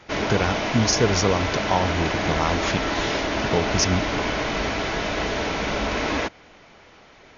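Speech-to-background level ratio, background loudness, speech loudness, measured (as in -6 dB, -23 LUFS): 0.5 dB, -25.0 LUFS, -24.5 LUFS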